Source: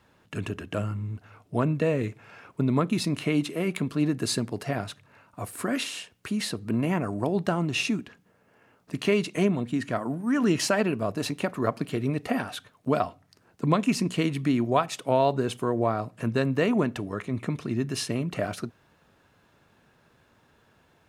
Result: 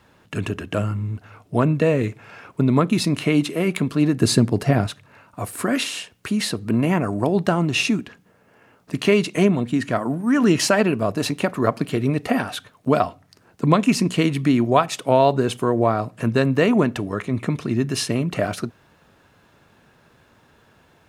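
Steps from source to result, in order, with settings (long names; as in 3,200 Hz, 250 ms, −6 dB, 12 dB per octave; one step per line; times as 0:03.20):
0:04.21–0:04.87: low-shelf EQ 380 Hz +8.5 dB
level +6.5 dB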